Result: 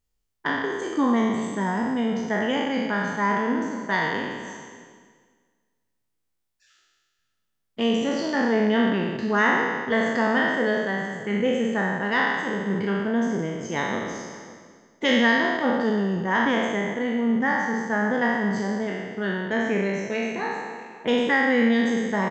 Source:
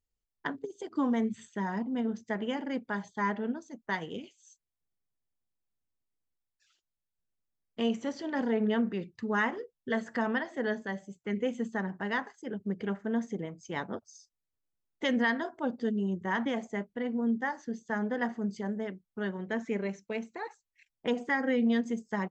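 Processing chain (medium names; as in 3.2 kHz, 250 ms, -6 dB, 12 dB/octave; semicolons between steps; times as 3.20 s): spectral sustain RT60 1.63 s; echo from a far wall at 94 m, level -19 dB; trim +5.5 dB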